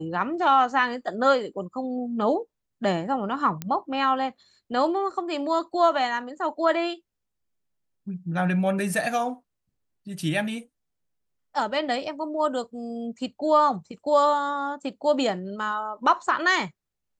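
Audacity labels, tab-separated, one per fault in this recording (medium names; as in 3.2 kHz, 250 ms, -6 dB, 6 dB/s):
3.620000	3.620000	pop -15 dBFS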